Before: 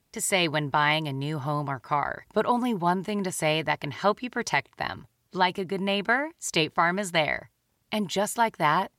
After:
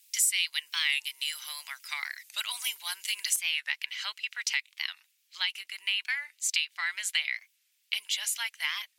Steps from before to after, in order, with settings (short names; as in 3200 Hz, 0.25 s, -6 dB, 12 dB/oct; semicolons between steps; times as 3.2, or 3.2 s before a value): Chebyshev high-pass 2400 Hz, order 3; high shelf 4100 Hz +11 dB, from 3.36 s -3 dB; compressor 4:1, threshold -33 dBFS, peak gain reduction 14 dB; record warp 45 rpm, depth 160 cents; gain +7.5 dB